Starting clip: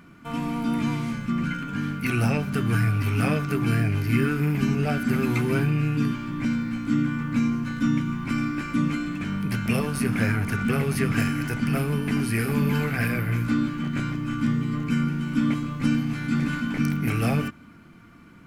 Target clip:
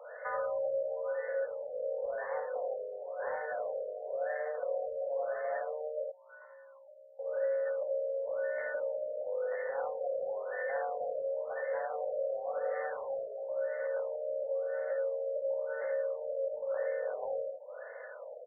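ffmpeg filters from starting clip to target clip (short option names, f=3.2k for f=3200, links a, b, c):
-filter_complex "[0:a]acompressor=threshold=-38dB:ratio=6,asettb=1/sr,asplit=3[a][b][c];[a]atrim=end=6.034[d];[b]atrim=start=6.03:end=7.19,asetpts=PTS-STARTPTS,afade=t=in:d=0.004:c=qsin,afade=t=out:st=1.156:d=0.004:c=qsin,asplit=3[e][f][g];[e]bandpass=f=730:t=q:w=8,volume=0dB[h];[f]bandpass=f=1.09k:t=q:w=8,volume=-6dB[i];[g]bandpass=f=2.44k:t=q:w=8,volume=-9dB[j];[h][i][j]amix=inputs=3:normalize=0[k];[c]atrim=start=7.186[l];[d][k]acrossfade=d=0.004:c1=hsin:c2=qsin[m];[m][l]acrossfade=d=0.004:c1=qsin:c2=hsin,highpass=f=200:t=q:w=0.5412,highpass=f=200:t=q:w=1.307,lowpass=f=3.5k:t=q:w=0.5176,lowpass=f=3.5k:t=q:w=0.7071,lowpass=f=3.5k:t=q:w=1.932,afreqshift=310,asoftclip=type=tanh:threshold=-32dB,aecho=1:1:57|79:0.447|0.501,afftfilt=real='re*lt(b*sr/1024,700*pow(2200/700,0.5+0.5*sin(2*PI*0.96*pts/sr)))':imag='im*lt(b*sr/1024,700*pow(2200/700,0.5+0.5*sin(2*PI*0.96*pts/sr)))':win_size=1024:overlap=0.75,volume=5.5dB"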